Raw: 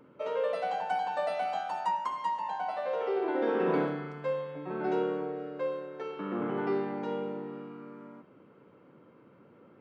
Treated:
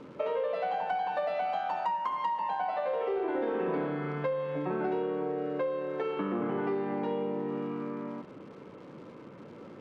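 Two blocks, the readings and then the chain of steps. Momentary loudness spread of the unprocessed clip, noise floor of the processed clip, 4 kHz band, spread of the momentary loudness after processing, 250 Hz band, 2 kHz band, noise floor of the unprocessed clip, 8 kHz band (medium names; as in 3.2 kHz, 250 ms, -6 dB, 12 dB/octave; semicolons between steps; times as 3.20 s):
11 LU, -49 dBFS, -1.0 dB, 17 LU, +1.0 dB, 0.0 dB, -59 dBFS, no reading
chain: in parallel at -11 dB: overload inside the chain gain 29 dB; on the sum: crackle 380 per s -53 dBFS; de-hum 126.7 Hz, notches 35; compression, threshold -37 dBFS, peak gain reduction 13 dB; low-pass 3.4 kHz 12 dB/octave; band-stop 1.4 kHz, Q 15; trim +8 dB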